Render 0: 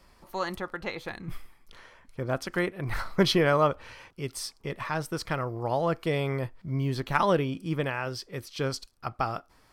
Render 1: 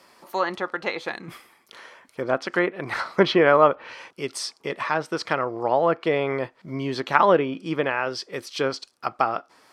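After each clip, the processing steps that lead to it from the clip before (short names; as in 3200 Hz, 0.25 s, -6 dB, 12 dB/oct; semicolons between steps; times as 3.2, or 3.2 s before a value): HPF 290 Hz 12 dB/oct; treble ducked by the level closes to 2500 Hz, closed at -26 dBFS; gain +7.5 dB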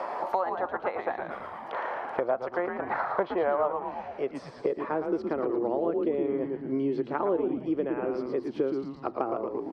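frequency-shifting echo 0.113 s, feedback 47%, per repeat -130 Hz, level -5.5 dB; band-pass sweep 730 Hz -> 350 Hz, 4.02–5.1; three-band squash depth 100%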